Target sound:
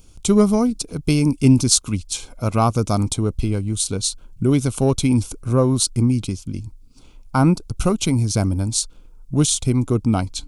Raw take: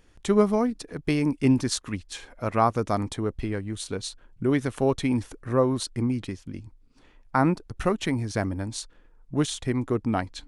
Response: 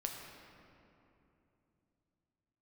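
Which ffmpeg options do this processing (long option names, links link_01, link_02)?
-af "asuperstop=centerf=1800:order=4:qfactor=2.9,acontrast=39,bass=frequency=250:gain=9,treble=frequency=4000:gain=14,volume=-3dB"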